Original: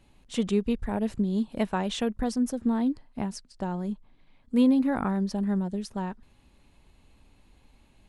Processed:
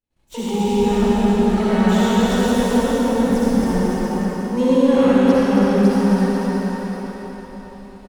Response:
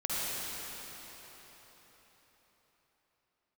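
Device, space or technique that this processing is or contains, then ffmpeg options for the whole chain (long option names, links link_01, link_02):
shimmer-style reverb: -filter_complex "[0:a]asplit=2[link_01][link_02];[link_02]asetrate=88200,aresample=44100,atempo=0.5,volume=-7dB[link_03];[link_01][link_03]amix=inputs=2:normalize=0[link_04];[1:a]atrim=start_sample=2205[link_05];[link_04][link_05]afir=irnorm=-1:irlink=0,agate=range=-33dB:threshold=-43dB:ratio=3:detection=peak,asettb=1/sr,asplit=3[link_06][link_07][link_08];[link_06]atrim=end=3.304[link_09];[link_07]atrim=start=3.3:end=3.78,asetpts=PTS-STARTPTS,afade=type=in:duration=0.004:curve=qsin,afade=type=out:start_time=0.476:duration=0.004:curve=qsin,lowshelf=frequency=140:gain=11.5[link_10];[link_08]atrim=start=3.776[link_11];[link_09][link_10]acrossfade=duration=0.004:curve1=hsin:curve2=qsin[link_12];[link_12][link_11]acrossfade=duration=0.004:curve1=qsin:curve2=hsin,aecho=1:1:270|499.5|694.6|860.4|1001:0.631|0.398|0.251|0.158|0.1"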